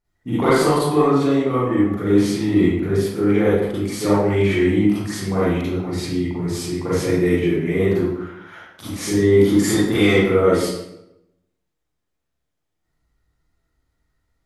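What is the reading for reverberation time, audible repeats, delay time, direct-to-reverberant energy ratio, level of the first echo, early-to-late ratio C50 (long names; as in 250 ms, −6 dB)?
0.85 s, no echo audible, no echo audible, −10.0 dB, no echo audible, −4.0 dB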